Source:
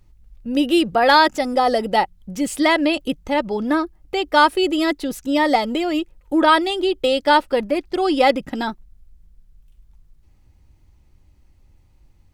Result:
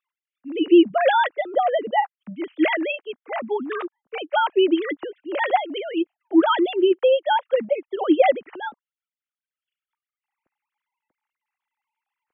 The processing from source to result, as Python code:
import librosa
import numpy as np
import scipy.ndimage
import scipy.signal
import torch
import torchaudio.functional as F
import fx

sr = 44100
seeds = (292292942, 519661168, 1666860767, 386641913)

y = fx.sine_speech(x, sr)
y = y * 10.0 ** (-2.5 / 20.0)